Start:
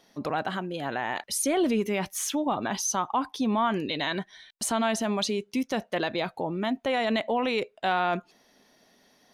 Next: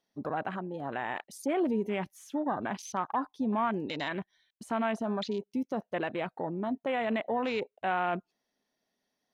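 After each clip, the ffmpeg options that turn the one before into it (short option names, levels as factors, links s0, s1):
-filter_complex "[0:a]afwtdn=0.02,acrossover=split=3400[s0][s1];[s1]acompressor=threshold=0.00794:ratio=4:attack=1:release=60[s2];[s0][s2]amix=inputs=2:normalize=0,volume=0.631"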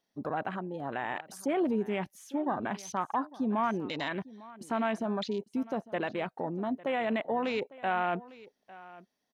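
-af "aecho=1:1:852:0.106"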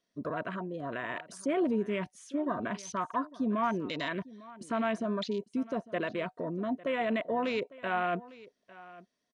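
-af "aresample=22050,aresample=44100,asuperstop=centerf=820:order=20:qfactor=5"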